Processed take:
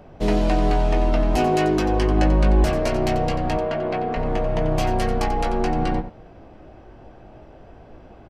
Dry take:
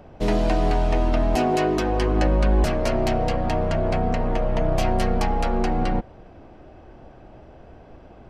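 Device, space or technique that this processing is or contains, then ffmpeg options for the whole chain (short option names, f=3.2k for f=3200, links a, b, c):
slapback doubling: -filter_complex "[0:a]asettb=1/sr,asplit=3[a][b][c];[a]atrim=end=3.574[d];[b]atrim=start=3.57:end=4.17,asetpts=PTS-STARTPTS,afade=t=in:d=0.004:c=qsin,afade=t=out:st=0.596:d=0.004:c=qsin,acrossover=split=210 4600:gain=0.178 1 0.141[e][f][g];[e][f][g]amix=inputs=3:normalize=0[h];[c]atrim=start=4.166[i];[d][h]acrossfade=d=0.004:c1=hsin:c2=qsin[j];[j][i]acrossfade=d=0.004:c1=qsin:c2=hsin,asplit=3[k][l][m];[l]adelay=19,volume=-8dB[n];[m]adelay=90,volume=-11.5dB[o];[k][n][o]amix=inputs=3:normalize=0"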